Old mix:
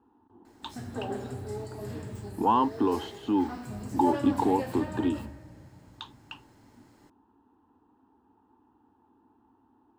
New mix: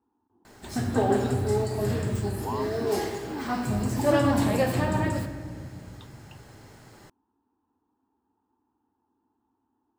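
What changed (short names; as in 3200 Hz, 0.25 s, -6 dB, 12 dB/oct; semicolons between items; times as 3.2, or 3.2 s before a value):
speech -11.0 dB; background +11.5 dB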